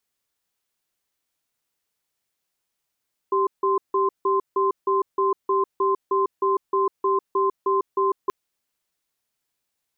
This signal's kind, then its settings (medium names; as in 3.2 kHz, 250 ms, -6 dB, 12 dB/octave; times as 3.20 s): cadence 390 Hz, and 1.04 kHz, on 0.15 s, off 0.16 s, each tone -20.5 dBFS 4.98 s